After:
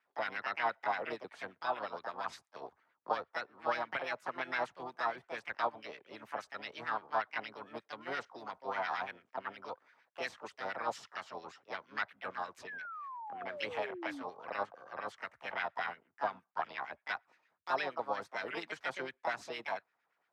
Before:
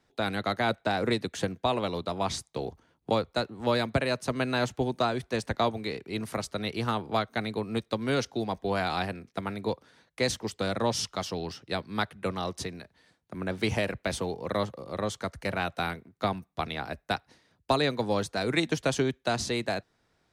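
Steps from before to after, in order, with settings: LFO band-pass sine 8.6 Hz 750–1800 Hz; harmoniser +5 st -3 dB; painted sound fall, 12.67–14.23, 260–1800 Hz -42 dBFS; gain -2.5 dB

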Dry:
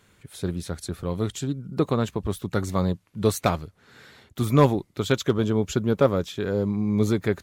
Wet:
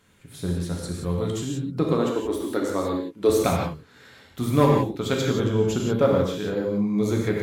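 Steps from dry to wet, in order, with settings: 1.92–3.3 resonant low shelf 220 Hz -10 dB, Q 3; non-linear reverb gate 0.2 s flat, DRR -1.5 dB; gain -3 dB

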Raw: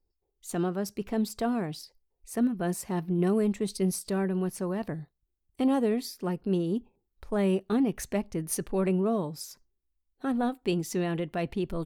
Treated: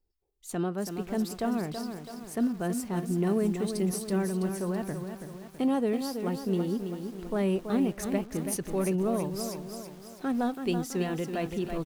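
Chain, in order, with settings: 9.33–10.58 G.711 law mismatch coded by mu; outdoor echo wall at 91 m, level -22 dB; lo-fi delay 0.329 s, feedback 55%, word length 8-bit, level -7 dB; gain -1.5 dB

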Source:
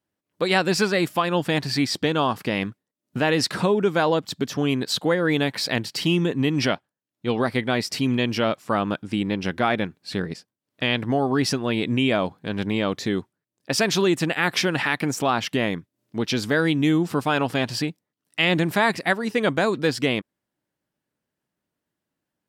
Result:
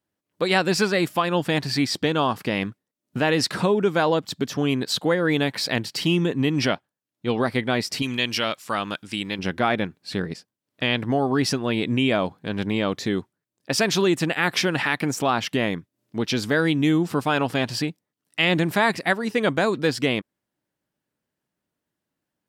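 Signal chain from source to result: 8.02–9.39 tilt shelf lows -7.5 dB, about 1400 Hz

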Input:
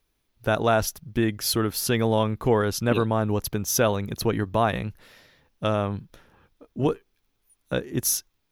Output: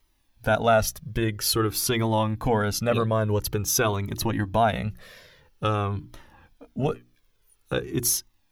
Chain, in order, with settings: notches 60/120/180/240/300/360 Hz; in parallel at 0 dB: compressor, threshold -31 dBFS, peak gain reduction 14 dB; on the sum: cascading flanger falling 0.49 Hz; gain +2.5 dB

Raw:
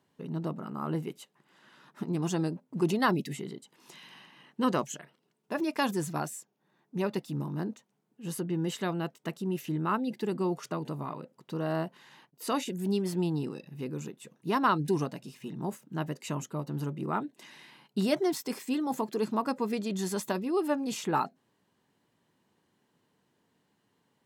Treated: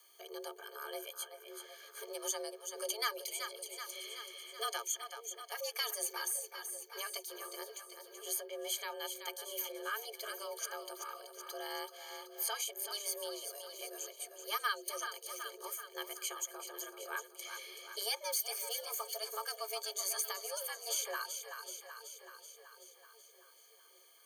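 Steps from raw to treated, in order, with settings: ripple EQ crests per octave 1.9, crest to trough 18 dB; on a send: split-band echo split 300 Hz, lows 0.566 s, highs 0.379 s, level -10 dB; on the sum: frequency shift +210 Hz; differentiator; three-band squash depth 40%; gain +3 dB

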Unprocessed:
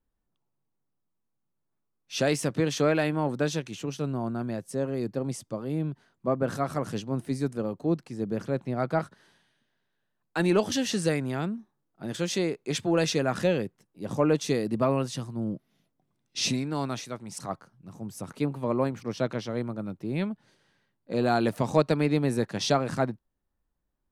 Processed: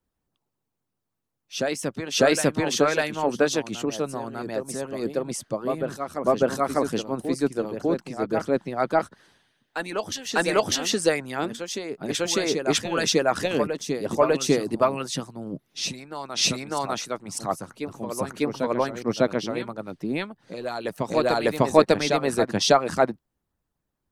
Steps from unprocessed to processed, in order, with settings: harmonic-percussive split harmonic -17 dB; reverse echo 0.599 s -7 dB; gain +8 dB

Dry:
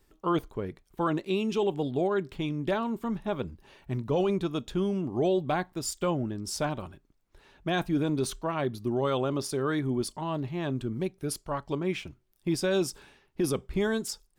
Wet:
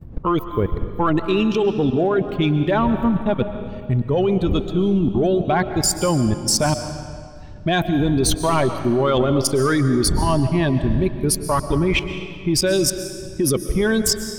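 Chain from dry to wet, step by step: per-bin expansion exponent 1.5; wind noise 92 Hz -47 dBFS; level quantiser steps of 20 dB; sine folder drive 19 dB, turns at -8.5 dBFS; on a send: reverb RT60 2.1 s, pre-delay 90 ms, DRR 9 dB

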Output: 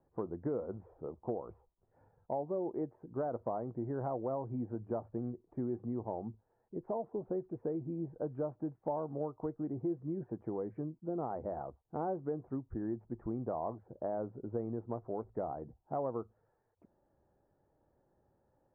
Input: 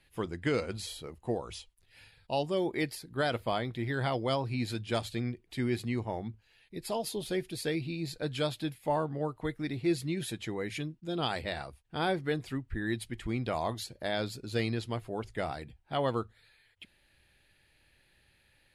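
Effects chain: Bessel low-pass 550 Hz, order 8; tilt +4.5 dB/oct; compressor 3:1, threshold -45 dBFS, peak gain reduction 10 dB; gain +10 dB

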